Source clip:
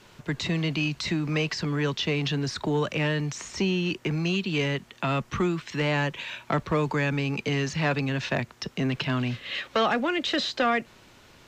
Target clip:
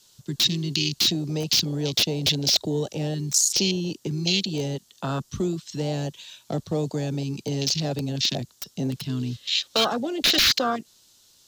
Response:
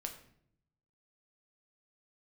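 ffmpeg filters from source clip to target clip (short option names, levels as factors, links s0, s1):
-af "aexciter=amount=9:drive=6.5:freq=3400,aeval=exprs='(mod(2.82*val(0)+1,2)-1)/2.82':c=same,afwtdn=0.0794"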